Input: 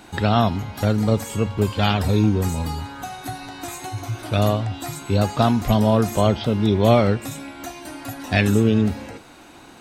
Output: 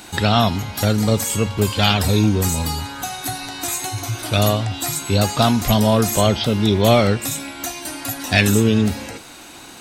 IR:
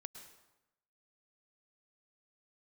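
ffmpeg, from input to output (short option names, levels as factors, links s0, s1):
-filter_complex "[0:a]highshelf=f=2700:g=11.5,asplit=2[s0][s1];[s1]asoftclip=type=tanh:threshold=0.237,volume=0.631[s2];[s0][s2]amix=inputs=2:normalize=0,volume=0.794"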